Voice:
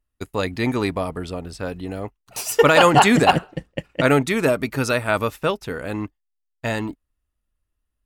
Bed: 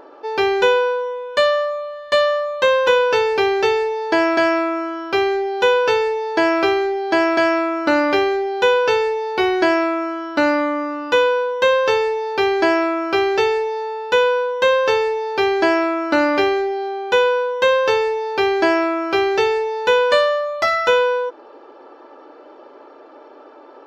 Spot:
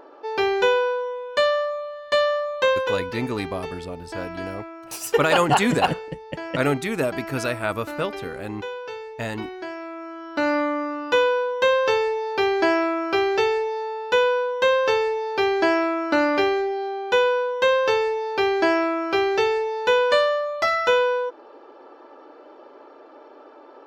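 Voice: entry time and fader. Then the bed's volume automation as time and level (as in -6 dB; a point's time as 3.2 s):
2.55 s, -5.0 dB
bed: 2.7 s -4 dB
3.16 s -17.5 dB
9.76 s -17.5 dB
10.57 s -3.5 dB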